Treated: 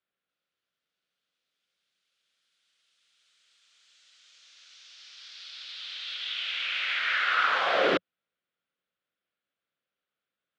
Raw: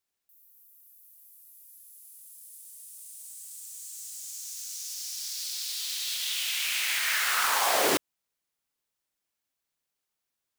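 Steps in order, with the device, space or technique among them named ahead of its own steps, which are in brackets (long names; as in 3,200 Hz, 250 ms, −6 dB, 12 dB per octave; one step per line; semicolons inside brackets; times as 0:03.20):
guitar cabinet (loudspeaker in its box 87–3,500 Hz, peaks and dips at 100 Hz −5 dB, 180 Hz +4 dB, 530 Hz +6 dB, 910 Hz −8 dB, 1,400 Hz +7 dB, 3,400 Hz +3 dB)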